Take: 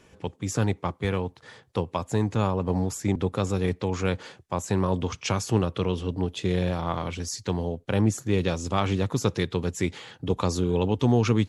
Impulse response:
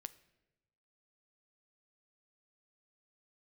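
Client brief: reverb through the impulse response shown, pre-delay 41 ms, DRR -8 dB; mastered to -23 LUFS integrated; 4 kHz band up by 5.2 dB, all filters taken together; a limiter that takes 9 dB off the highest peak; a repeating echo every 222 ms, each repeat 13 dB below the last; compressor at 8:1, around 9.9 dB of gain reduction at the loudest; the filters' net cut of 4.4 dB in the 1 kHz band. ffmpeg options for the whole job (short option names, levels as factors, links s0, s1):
-filter_complex "[0:a]equalizer=f=1000:t=o:g=-6,equalizer=f=4000:t=o:g=7,acompressor=threshold=0.0447:ratio=8,alimiter=limit=0.0794:level=0:latency=1,aecho=1:1:222|444|666:0.224|0.0493|0.0108,asplit=2[s0][s1];[1:a]atrim=start_sample=2205,adelay=41[s2];[s1][s2]afir=irnorm=-1:irlink=0,volume=4.47[s3];[s0][s3]amix=inputs=2:normalize=0,volume=1.33"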